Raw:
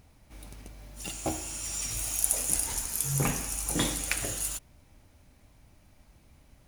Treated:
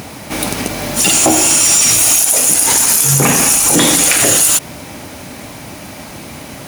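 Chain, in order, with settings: compressor 6:1, threshold -33 dBFS, peak gain reduction 13 dB; HPF 180 Hz 12 dB/oct; soft clip -27 dBFS, distortion -17 dB; maximiser +35 dB; gain -1 dB

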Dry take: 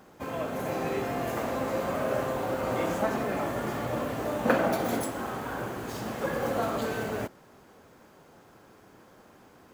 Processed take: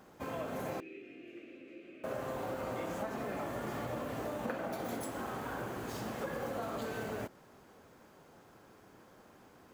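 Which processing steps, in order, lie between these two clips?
compressor 6:1, threshold -31 dBFS, peak gain reduction 12.5 dB; 0.8–2.04 double band-pass 920 Hz, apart 2.9 oct; gain -4 dB

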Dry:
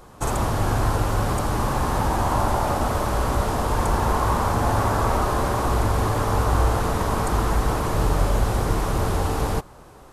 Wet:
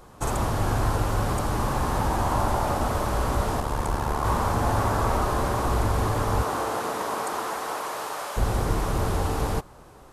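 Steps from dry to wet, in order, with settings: 3.6–4.25 AM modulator 73 Hz, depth 50%; 6.42–8.36 HPF 230 Hz -> 820 Hz 12 dB/oct; gain -2.5 dB

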